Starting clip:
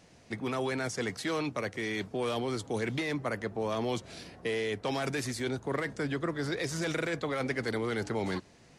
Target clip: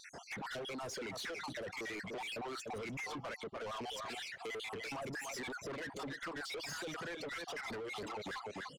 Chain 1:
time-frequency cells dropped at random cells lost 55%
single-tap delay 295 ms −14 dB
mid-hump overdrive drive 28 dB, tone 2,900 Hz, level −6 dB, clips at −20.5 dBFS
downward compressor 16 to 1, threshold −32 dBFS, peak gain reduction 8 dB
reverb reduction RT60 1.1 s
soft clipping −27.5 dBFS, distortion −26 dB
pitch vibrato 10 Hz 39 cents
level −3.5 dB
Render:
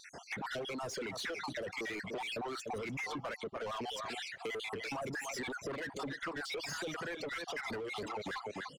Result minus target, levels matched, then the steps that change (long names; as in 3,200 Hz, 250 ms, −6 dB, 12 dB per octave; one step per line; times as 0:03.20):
soft clipping: distortion −12 dB
change: soft clipping −36 dBFS, distortion −14 dB